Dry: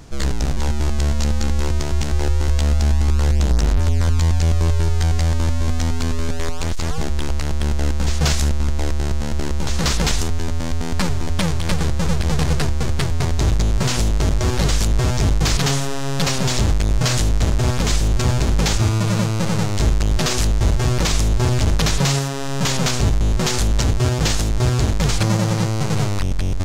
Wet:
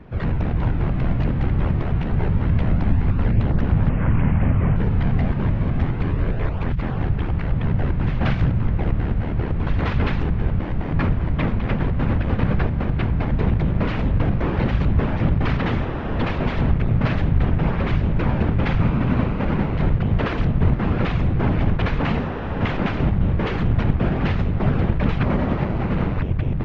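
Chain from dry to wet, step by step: 3.89–4.76 s: one-bit delta coder 16 kbps, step -25.5 dBFS; low-pass 2.5 kHz 24 dB/octave; whisper effect; trim -1.5 dB

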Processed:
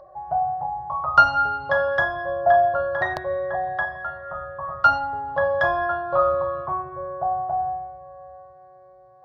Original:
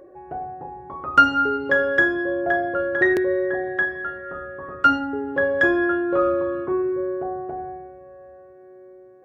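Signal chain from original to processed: FFT filter 150 Hz 0 dB, 250 Hz -22 dB, 430 Hz -21 dB, 630 Hz +6 dB, 1.1 kHz +6 dB, 1.5 kHz -6 dB, 2.4 kHz -13 dB, 4.4 kHz +3 dB, 7.3 kHz -12 dB; trim +3 dB

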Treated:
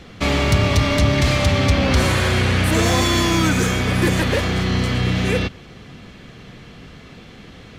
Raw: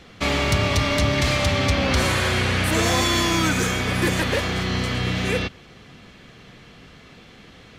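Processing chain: bass shelf 420 Hz +5 dB; in parallel at -8 dB: saturation -27.5 dBFS, distortion -5 dB

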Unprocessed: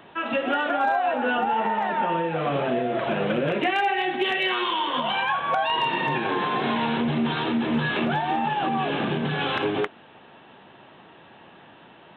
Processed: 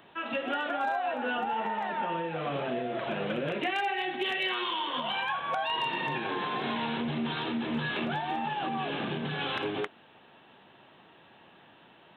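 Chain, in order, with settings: treble shelf 3.8 kHz +8 dB; trim -8 dB

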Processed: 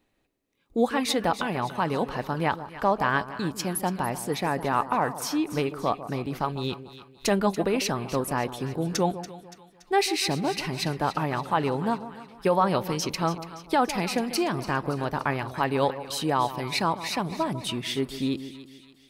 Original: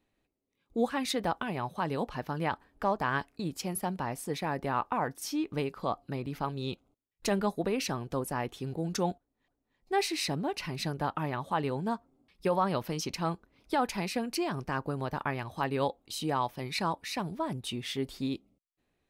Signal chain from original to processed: peaking EQ 72 Hz -2.5 dB 2.7 oct; on a send: two-band feedback delay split 1.2 kHz, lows 148 ms, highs 285 ms, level -13 dB; on the sum: trim +6 dB

